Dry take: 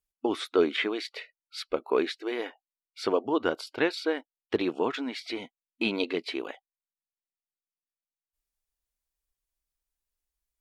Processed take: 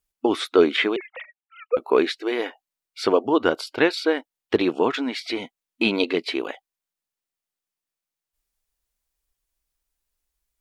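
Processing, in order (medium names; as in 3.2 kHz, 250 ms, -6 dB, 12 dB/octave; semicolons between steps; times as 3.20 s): 0.96–1.77 s: formants replaced by sine waves; trim +7 dB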